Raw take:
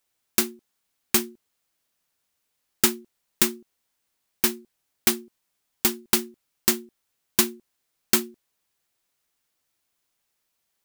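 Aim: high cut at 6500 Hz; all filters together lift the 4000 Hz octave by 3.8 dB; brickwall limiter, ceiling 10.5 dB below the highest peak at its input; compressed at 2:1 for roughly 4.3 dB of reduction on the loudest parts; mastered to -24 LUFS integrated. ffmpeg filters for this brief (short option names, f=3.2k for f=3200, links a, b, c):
-af "lowpass=6.5k,equalizer=f=4k:t=o:g=5.5,acompressor=threshold=-25dB:ratio=2,volume=12.5dB,alimiter=limit=-4dB:level=0:latency=1"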